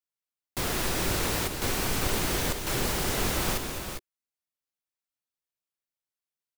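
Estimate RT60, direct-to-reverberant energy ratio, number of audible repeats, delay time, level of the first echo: no reverb, no reverb, 2, 209 ms, -10.0 dB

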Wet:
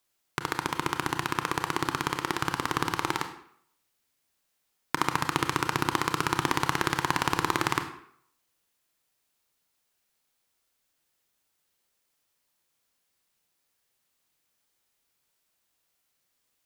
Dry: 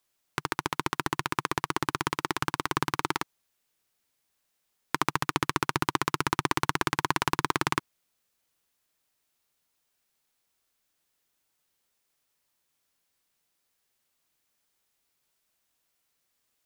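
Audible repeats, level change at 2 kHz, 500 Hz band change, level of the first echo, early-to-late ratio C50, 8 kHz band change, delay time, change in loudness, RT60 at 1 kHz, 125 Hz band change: no echo, +1.0 dB, +1.0 dB, no echo, 9.5 dB, +0.5 dB, no echo, +0.5 dB, 0.65 s, +1.0 dB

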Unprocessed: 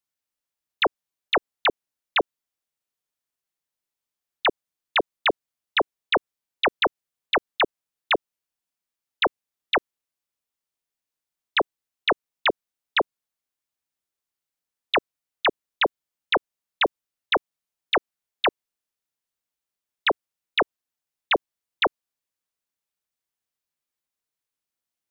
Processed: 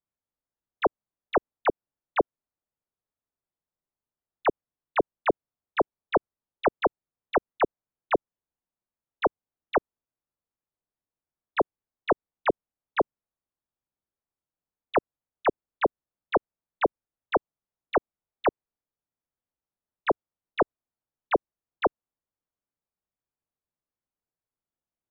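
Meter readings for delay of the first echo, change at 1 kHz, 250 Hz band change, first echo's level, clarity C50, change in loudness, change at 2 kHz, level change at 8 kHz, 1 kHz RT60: no echo, -2.0 dB, +1.5 dB, no echo, no reverb, -4.0 dB, -9.5 dB, no reading, no reverb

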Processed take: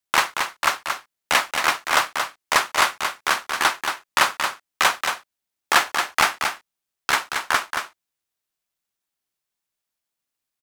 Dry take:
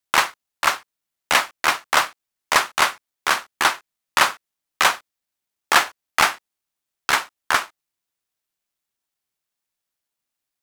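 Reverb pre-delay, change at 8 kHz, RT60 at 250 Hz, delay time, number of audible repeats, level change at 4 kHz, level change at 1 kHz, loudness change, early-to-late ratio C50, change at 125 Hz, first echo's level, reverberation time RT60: no reverb, -0.5 dB, no reverb, 227 ms, 1, -0.5 dB, -0.5 dB, -1.5 dB, no reverb, -0.5 dB, -6.0 dB, no reverb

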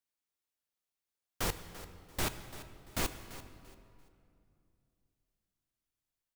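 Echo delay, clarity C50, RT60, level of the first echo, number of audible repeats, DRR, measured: 340 ms, 10.0 dB, 2.5 s, -15.5 dB, 2, 9.0 dB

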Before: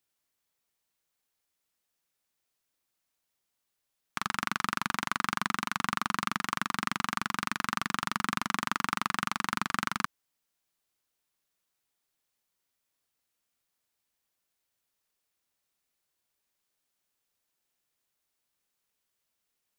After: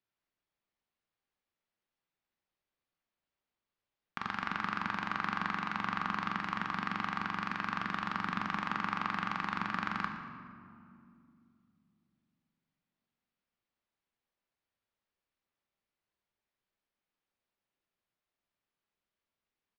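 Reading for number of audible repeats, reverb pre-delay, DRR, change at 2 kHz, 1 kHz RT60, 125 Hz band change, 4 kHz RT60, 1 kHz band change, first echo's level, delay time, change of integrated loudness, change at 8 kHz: 1, 5 ms, 3.5 dB, -3.5 dB, 2.2 s, -1.5 dB, 1.2 s, -3.0 dB, -15.0 dB, 117 ms, -3.5 dB, under -20 dB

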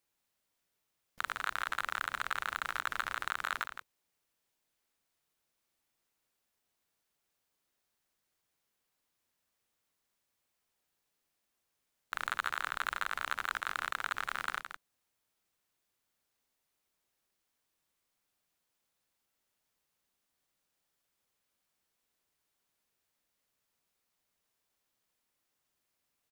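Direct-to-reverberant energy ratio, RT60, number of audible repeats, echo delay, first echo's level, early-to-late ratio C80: no reverb, no reverb, 1, 165 ms, -9.0 dB, no reverb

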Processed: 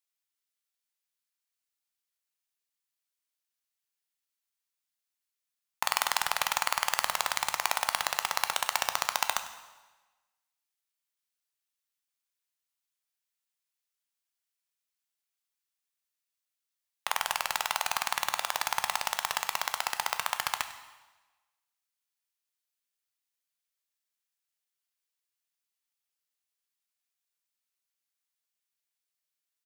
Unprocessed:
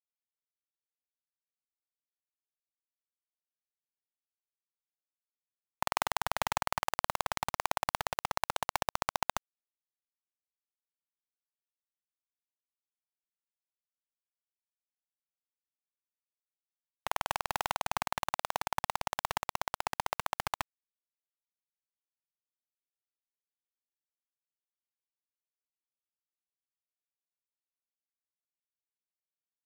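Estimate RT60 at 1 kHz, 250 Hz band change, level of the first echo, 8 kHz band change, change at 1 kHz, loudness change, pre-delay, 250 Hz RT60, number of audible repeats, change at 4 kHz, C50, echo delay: 1.2 s, -7.5 dB, -19.0 dB, +9.0 dB, +2.0 dB, +5.0 dB, 4 ms, 1.1 s, 1, +8.0 dB, 10.5 dB, 99 ms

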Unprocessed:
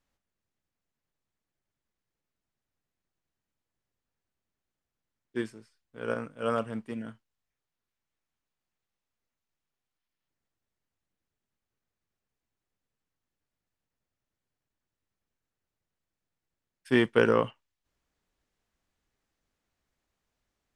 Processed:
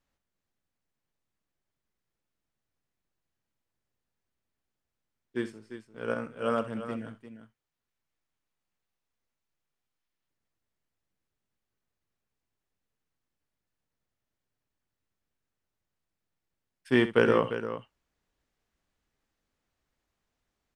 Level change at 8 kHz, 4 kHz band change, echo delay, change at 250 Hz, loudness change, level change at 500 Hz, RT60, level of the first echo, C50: no reading, 0.0 dB, 65 ms, +0.5 dB, 0.0 dB, +0.5 dB, no reverb, -13.5 dB, no reverb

